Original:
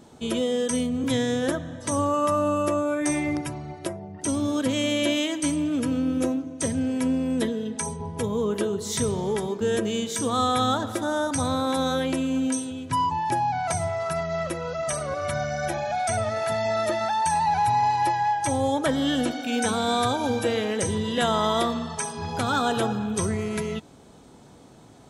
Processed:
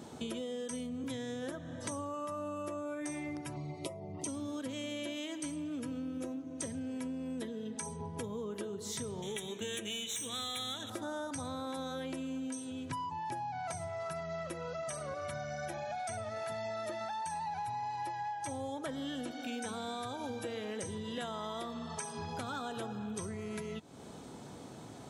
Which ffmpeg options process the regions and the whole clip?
-filter_complex "[0:a]asettb=1/sr,asplit=3[a][b][c];[a]atrim=end=3.564[d];[b]atrim=start=3.56:end=4.27,asetpts=PTS-STARTPTS,afade=t=in:d=0.004:c=qsin,afade=t=out:st=0.706:d=0.004:c=qsin,asuperstop=centerf=1600:order=8:qfactor=2.4,aecho=1:1:7.3:0.56,atrim=end_sample=31311[e];[c]atrim=start=4.266[f];[d][e]acrossfade=d=0.004:c1=hsin:c2=qsin[g];[g][f]acrossfade=d=0.004:c1=qsin:c2=hsin,asettb=1/sr,asplit=3[h][i][j];[h]atrim=end=9.224[k];[i]atrim=start=9.22:end=10.9,asetpts=PTS-STARTPTS,afade=t=in:d=0.004:c=qsin,afade=t=out:st=1.676:d=0.004:c=qsin,highshelf=f=1.7k:t=q:w=1.5:g=13,aeval=exprs='(tanh(5.01*val(0)+0.4)-tanh(0.4))/5.01':c=same,asuperstop=centerf=4800:order=12:qfactor=3.2[l];[j]atrim=start=10.896[m];[k][l]acrossfade=d=0.004:c1=hsin:c2=qsin[n];[n][m]acrossfade=d=0.004:c1=qsin:c2=hsin,acompressor=threshold=-40dB:ratio=6,highpass=78,volume=1.5dB"

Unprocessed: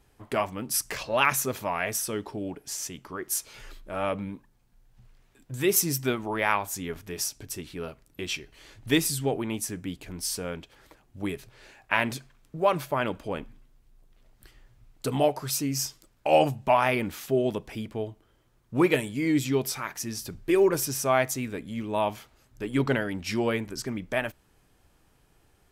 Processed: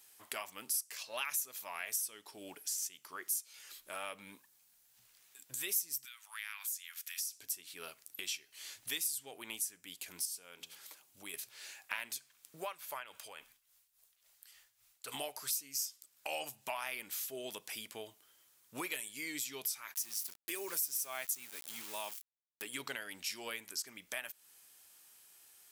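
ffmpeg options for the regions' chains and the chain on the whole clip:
-filter_complex "[0:a]asettb=1/sr,asplit=3[a][b][c];[a]atrim=end=6.054[d];[b]atrim=start=6.05:end=7.33,asetpts=PTS-STARTPTS,afade=t=in:d=0.004:c=qsin,afade=t=out:st=1.276:d=0.004:c=qsin,highpass=f=1.4k:w=0.5412,highpass=f=1.4k:w=1.3066,acompressor=threshold=-37dB:ratio=2.5:attack=3.2:release=140:knee=1:detection=peak[e];[c]atrim=start=7.326[f];[d][e]acrossfade=d=0.004:c1=hsin:c2=qsin[g];[g][f]acrossfade=d=0.004:c1=qsin:c2=hsin,asettb=1/sr,asplit=3[h][i][j];[h]atrim=end=10.254[k];[i]atrim=start=10.25:end=11.34,asetpts=PTS-STARTPTS,afade=t=in:d=0.004:c=qsin,afade=t=out:st=1.086:d=0.004:c=qsin,equalizer=f=1.8k:w=5.6:g=-4.5,bandreject=f=83.23:t=h:w=4,bandreject=f=166.46:t=h:w=4,bandreject=f=249.69:t=h:w=4,bandreject=f=332.92:t=h:w=4,bandreject=f=416.15:t=h:w=4,bandreject=f=499.38:t=h:w=4,bandreject=f=582.61:t=h:w=4,bandreject=f=665.84:t=h:w=4,bandreject=f=749.07:t=h:w=4,bandreject=f=832.3:t=h:w=4,bandreject=f=915.53:t=h:w=4,bandreject=f=998.76:t=h:w=4,bandreject=f=1.08199k:t=h:w=4,bandreject=f=1.16522k:t=h:w=4,acompressor=threshold=-41dB:ratio=2:attack=3.2:release=140:knee=1:detection=peak[l];[j]atrim=start=11.336[m];[k][l]acrossfade=d=0.004:c1=hsin:c2=qsin[n];[n][m]acrossfade=d=0.004:c1=qsin:c2=hsin,asettb=1/sr,asplit=3[o][p][q];[o]atrim=end=12.654[r];[p]atrim=start=12.65:end=15.14,asetpts=PTS-STARTPTS,afade=t=in:d=0.004:c=qsin,afade=t=out:st=2.486:d=0.004:c=qsin,acrossover=split=2900[s][t];[t]acompressor=threshold=-47dB:ratio=4:attack=1:release=60[u];[s][u]amix=inputs=2:normalize=0,equalizer=f=240:w=0.82:g=-11.5,tremolo=f=3.6:d=0.71[v];[q]atrim=start=15.136[w];[r][v]acrossfade=d=0.004:c1=hsin:c2=qsin[x];[x][w]acrossfade=d=0.004:c1=qsin:c2=hsin,asettb=1/sr,asplit=3[y][z][aa];[y]atrim=end=19.944[ab];[z]atrim=start=19.94:end=22.62,asetpts=PTS-STARTPTS,afade=t=in:d=0.004:c=qsin,afade=t=out:st=2.676:d=0.004:c=qsin,highshelf=f=12k:g=7,aeval=exprs='val(0)*gte(abs(val(0)),0.0141)':c=same[ac];[aa]atrim=start=22.616[ad];[ab][ac]acrossfade=d=0.004:c1=hsin:c2=qsin[ae];[ae][ad]acrossfade=d=0.004:c1=qsin:c2=hsin,aderivative,acompressor=threshold=-52dB:ratio=3,volume=11dB"

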